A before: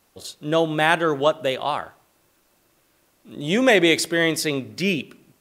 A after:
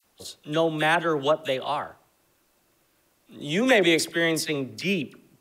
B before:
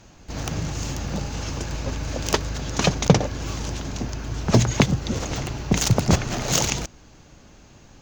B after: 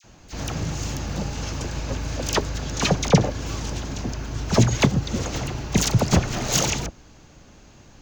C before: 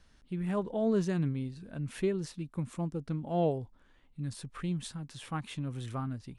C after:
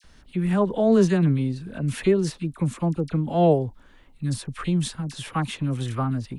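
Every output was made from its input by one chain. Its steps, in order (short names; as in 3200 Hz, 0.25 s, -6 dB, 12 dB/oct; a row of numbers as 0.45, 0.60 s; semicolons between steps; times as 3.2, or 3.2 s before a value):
dispersion lows, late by 42 ms, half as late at 1500 Hz; match loudness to -24 LUFS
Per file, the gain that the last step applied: -3.5, 0.0, +10.5 dB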